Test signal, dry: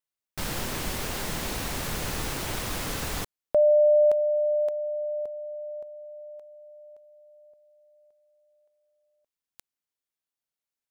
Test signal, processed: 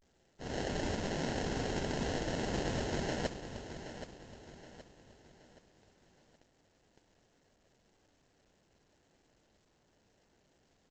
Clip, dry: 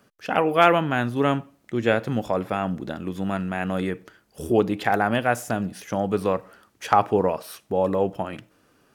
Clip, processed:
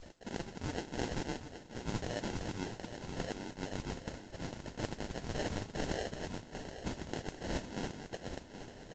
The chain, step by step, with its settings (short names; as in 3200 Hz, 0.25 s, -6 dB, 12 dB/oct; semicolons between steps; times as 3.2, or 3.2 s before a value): steep high-pass 2200 Hz 48 dB/oct; auto swell 0.352 s; reverse; compressor 8:1, threshold -51 dBFS; reverse; vibrato 0.31 Hz 64 cents; sample-and-hold 37×; modulation noise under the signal 10 dB; on a send: feedback echo 0.773 s, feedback 41%, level -10.5 dB; on the sum: gain +17.5 dB; A-law 128 kbps 16000 Hz